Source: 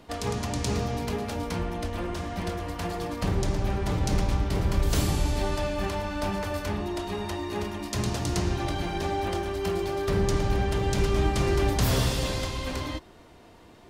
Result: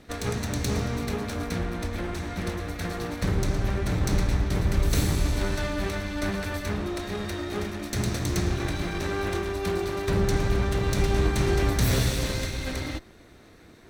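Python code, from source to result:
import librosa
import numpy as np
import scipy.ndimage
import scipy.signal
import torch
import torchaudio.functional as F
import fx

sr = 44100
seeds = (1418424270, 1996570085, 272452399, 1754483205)

y = fx.lower_of_two(x, sr, delay_ms=0.51)
y = F.gain(torch.from_numpy(y), 1.5).numpy()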